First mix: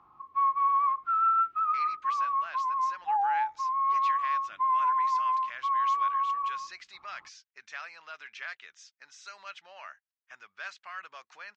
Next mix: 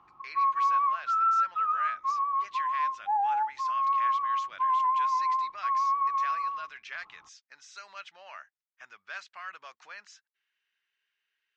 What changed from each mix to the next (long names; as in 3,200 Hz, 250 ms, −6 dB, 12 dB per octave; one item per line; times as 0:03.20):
speech: entry −1.50 s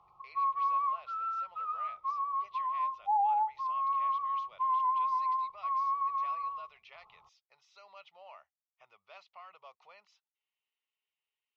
speech: add high-frequency loss of the air 300 metres
master: add phaser with its sweep stopped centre 670 Hz, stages 4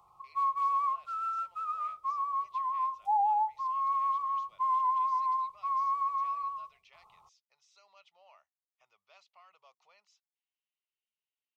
speech −9.5 dB
master: remove high-frequency loss of the air 200 metres